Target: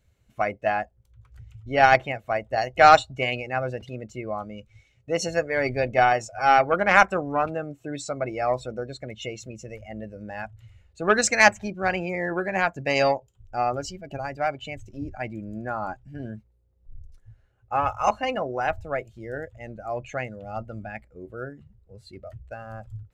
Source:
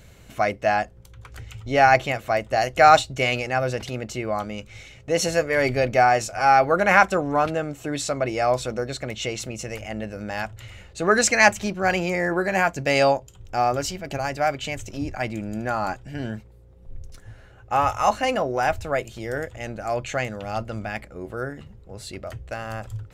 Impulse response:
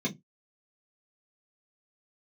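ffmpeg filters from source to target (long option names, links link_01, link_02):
-af "aeval=exprs='0.891*(cos(1*acos(clip(val(0)/0.891,-1,1)))-cos(1*PI/2))+0.0562*(cos(7*acos(clip(val(0)/0.891,-1,1)))-cos(7*PI/2))':channel_layout=same,afftdn=noise_reduction=16:noise_floor=-35"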